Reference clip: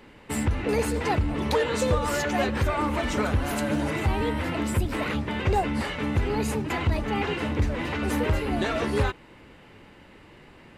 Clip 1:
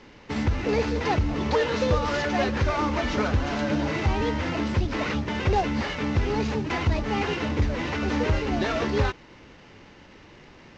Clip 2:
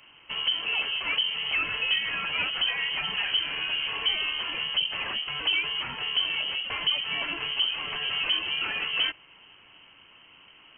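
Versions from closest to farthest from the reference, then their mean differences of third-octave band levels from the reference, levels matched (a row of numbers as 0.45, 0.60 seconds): 1, 2; 3.0, 15.5 decibels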